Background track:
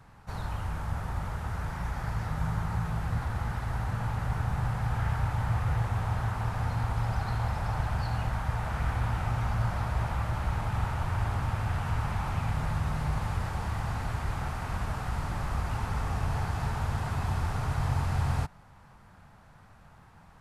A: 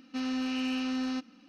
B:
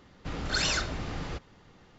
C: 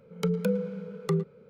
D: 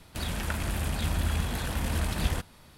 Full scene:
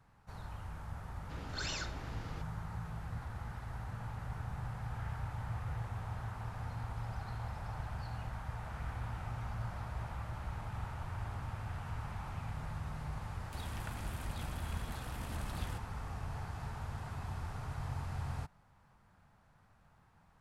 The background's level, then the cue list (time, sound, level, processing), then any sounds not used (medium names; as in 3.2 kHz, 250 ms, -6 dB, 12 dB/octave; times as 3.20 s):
background track -11.5 dB
1.04 s: add B -12 dB
13.37 s: add D -14 dB
not used: A, C